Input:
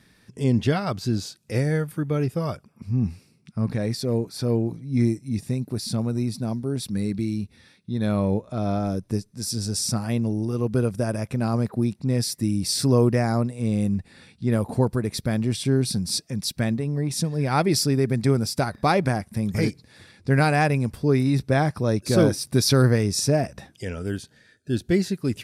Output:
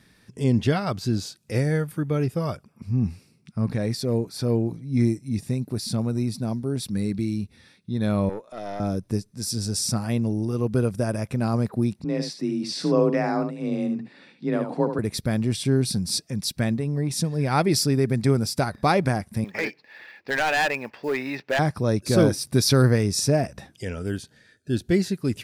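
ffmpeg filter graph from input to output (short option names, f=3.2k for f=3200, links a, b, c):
-filter_complex "[0:a]asettb=1/sr,asplit=3[a][b][c];[a]atrim=end=8.294[d];[b]atrim=start=8.29:end=8.8,asetpts=PTS-STARTPTS,afade=t=in:d=0.004:c=qsin,afade=t=out:st=0.506:d=0.004:c=qsin,highpass=390,aeval=exprs='(tanh(17.8*val(0)+0.5)-tanh(0.5))/17.8':c=same[e];[c]atrim=start=8.796[f];[d][e]acrossfade=d=0.004:c1=hsin:c2=qsin[g];[g][f]acrossfade=d=0.004:c1=qsin:c2=hsin,asettb=1/sr,asplit=3[h][i][j];[h]atrim=end=12.044[k];[i]atrim=start=12.04:end=14.99,asetpts=PTS-STARTPTS,afade=t=in:d=0.004:c=qsin,afade=t=out:st=2.946:d=0.004:c=qsin,highpass=200,lowpass=3.9k,afreqshift=29,aecho=1:1:73:0.398,atrim=end_sample=130095[l];[j]atrim=start=14.986[m];[k][l]acrossfade=d=0.004:c1=hsin:c2=qsin[n];[n][m]acrossfade=d=0.004:c1=qsin:c2=hsin,asettb=1/sr,asplit=3[o][p][q];[o]atrim=end=19.444[r];[p]atrim=start=19.44:end=21.59,asetpts=PTS-STARTPTS,afade=t=in:d=0.004:c=qsin,afade=t=out:st=2.146:d=0.004:c=qsin,highpass=450,equalizer=f=600:t=q:w=4:g=3,equalizer=f=870:t=q:w=4:g=6,equalizer=f=1.8k:t=q:w=4:g=10,equalizer=f=2.6k:t=q:w=4:g=8,equalizer=f=3.8k:t=q:w=4:g=-4,lowpass=f=4.6k:w=0.5412,lowpass=f=4.6k:w=1.3066,acrusher=bits=7:mode=log:mix=0:aa=0.000001,volume=18.5dB,asoftclip=hard,volume=-18.5dB[s];[q]atrim=start=21.586[t];[r][s]acrossfade=d=0.004:c1=hsin:c2=qsin[u];[u][t]acrossfade=d=0.004:c1=qsin:c2=hsin"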